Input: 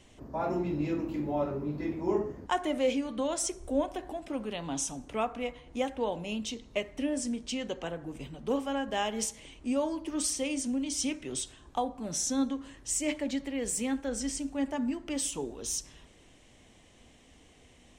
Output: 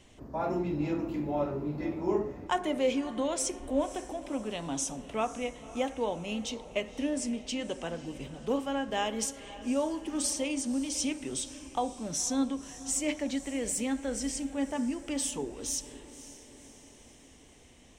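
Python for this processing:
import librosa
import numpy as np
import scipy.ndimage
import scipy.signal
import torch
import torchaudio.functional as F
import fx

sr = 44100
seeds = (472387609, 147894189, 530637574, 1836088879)

y = fx.echo_diffused(x, sr, ms=539, feedback_pct=54, wet_db=-15.5)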